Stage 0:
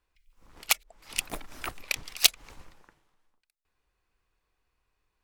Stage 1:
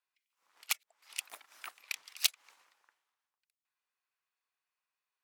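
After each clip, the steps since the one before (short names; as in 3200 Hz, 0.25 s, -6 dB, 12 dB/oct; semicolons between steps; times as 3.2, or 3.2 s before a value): HPF 960 Hz 12 dB/oct; gain -8.5 dB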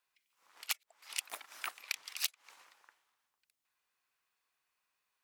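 compressor 8:1, threshold -39 dBFS, peak gain reduction 17.5 dB; gain +6.5 dB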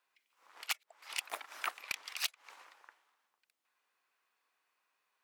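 HPF 290 Hz 12 dB/oct; high shelf 3300 Hz -9.5 dB; hard clip -30.5 dBFS, distortion -12 dB; gain +6.5 dB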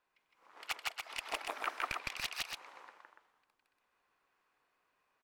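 tilt -3 dB/oct; loudspeakers at several distances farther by 55 m 0 dB, 98 m -5 dB; gain +1 dB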